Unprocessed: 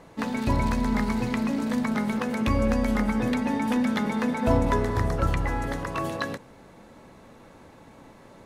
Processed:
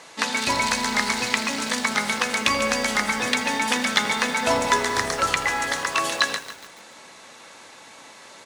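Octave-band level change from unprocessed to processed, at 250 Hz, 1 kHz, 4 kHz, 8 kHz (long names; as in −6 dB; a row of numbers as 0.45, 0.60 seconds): −6.5, +6.0, +16.5, +18.0 decibels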